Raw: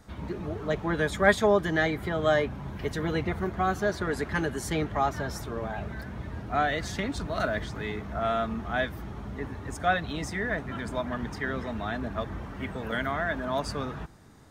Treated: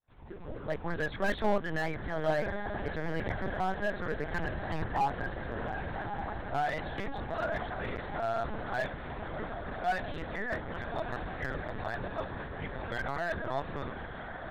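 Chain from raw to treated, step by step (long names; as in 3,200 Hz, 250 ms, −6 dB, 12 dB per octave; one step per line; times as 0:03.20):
fade in at the beginning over 0.58 s
mains-hum notches 60/120/180/240/300 Hz
0:04.39–0:05.03: comb filter 1.1 ms, depth 55%
in parallel at −9.5 dB: log-companded quantiser 4 bits
on the sum: hollow resonant body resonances 820/1,600 Hz, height 6 dB, ringing for 30 ms
on a send: feedback delay with all-pass diffusion 1,216 ms, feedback 69%, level −9 dB
on the sum: linear-prediction vocoder at 8 kHz pitch kept
slew-rate limiting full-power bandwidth 120 Hz
level −8 dB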